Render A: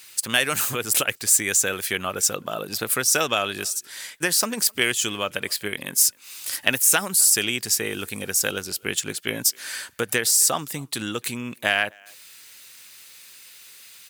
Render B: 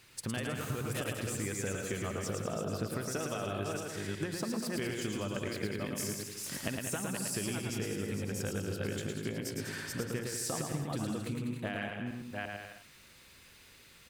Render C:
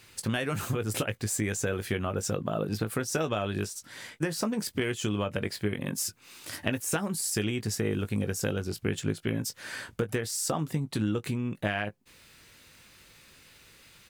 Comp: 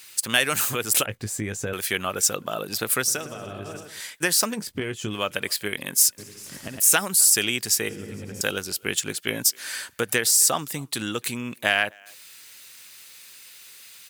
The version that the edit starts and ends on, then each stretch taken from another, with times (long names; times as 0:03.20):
A
0:01.06–0:01.73: punch in from C
0:03.13–0:03.90: punch in from B, crossfade 0.24 s
0:04.55–0:05.13: punch in from C, crossfade 0.10 s
0:06.18–0:06.80: punch in from B
0:07.89–0:08.41: punch in from B